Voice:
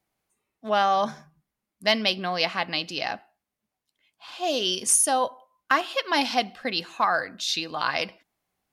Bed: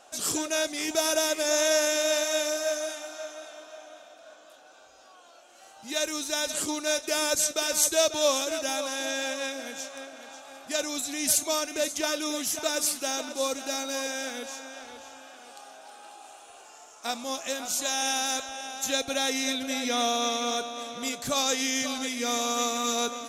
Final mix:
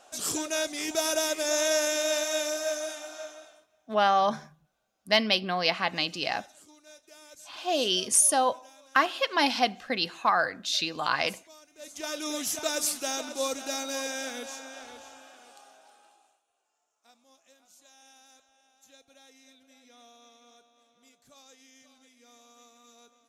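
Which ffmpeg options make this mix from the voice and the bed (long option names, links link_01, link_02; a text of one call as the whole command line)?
ffmpeg -i stem1.wav -i stem2.wav -filter_complex "[0:a]adelay=3250,volume=-1dB[link_01];[1:a]volume=21.5dB,afade=type=out:start_time=3.21:duration=0.46:silence=0.0707946,afade=type=in:start_time=11.77:duration=0.59:silence=0.0668344,afade=type=out:start_time=14.86:duration=1.56:silence=0.0421697[link_02];[link_01][link_02]amix=inputs=2:normalize=0" out.wav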